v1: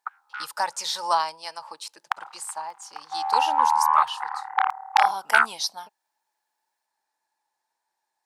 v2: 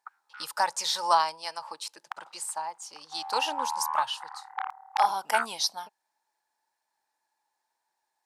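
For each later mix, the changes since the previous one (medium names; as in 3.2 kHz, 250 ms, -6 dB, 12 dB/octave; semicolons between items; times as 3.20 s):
background -11.5 dB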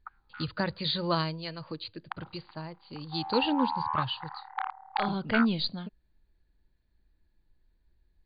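speech: remove resonant high-pass 850 Hz, resonance Q 6.9; master: add brick-wall FIR low-pass 4.8 kHz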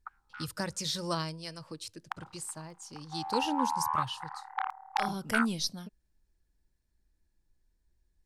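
speech -5.0 dB; master: remove brick-wall FIR low-pass 4.8 kHz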